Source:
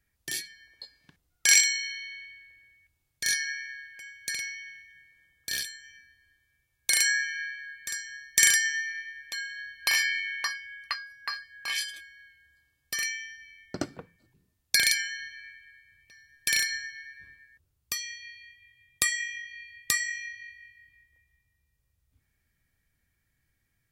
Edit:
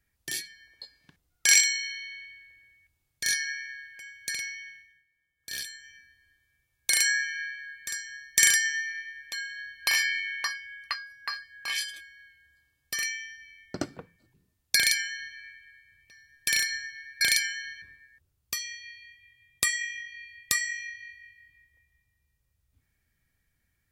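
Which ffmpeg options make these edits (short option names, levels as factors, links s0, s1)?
-filter_complex "[0:a]asplit=5[s0][s1][s2][s3][s4];[s0]atrim=end=5.04,asetpts=PTS-STARTPTS,afade=t=out:st=4.65:d=0.39:silence=0.188365[s5];[s1]atrim=start=5.04:end=5.35,asetpts=PTS-STARTPTS,volume=0.188[s6];[s2]atrim=start=5.35:end=17.212,asetpts=PTS-STARTPTS,afade=t=in:d=0.39:silence=0.188365[s7];[s3]atrim=start=14.758:end=15.372[s8];[s4]atrim=start=17.208[s9];[s5][s6][s7]concat=n=3:v=0:a=1[s10];[s10][s8]acrossfade=d=0.004:c1=hsin:c2=hsin[s11];[s11][s9]acrossfade=d=0.004:c1=hsin:c2=hsin"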